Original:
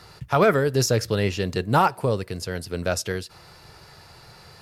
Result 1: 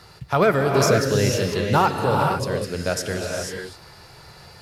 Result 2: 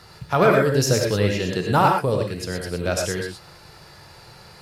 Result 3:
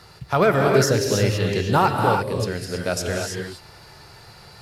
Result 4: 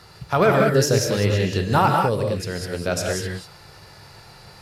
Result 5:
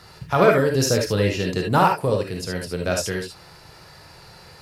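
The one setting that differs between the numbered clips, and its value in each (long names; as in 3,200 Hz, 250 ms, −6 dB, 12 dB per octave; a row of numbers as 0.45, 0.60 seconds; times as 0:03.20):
reverb whose tail is shaped and stops, gate: 520, 140, 350, 220, 90 milliseconds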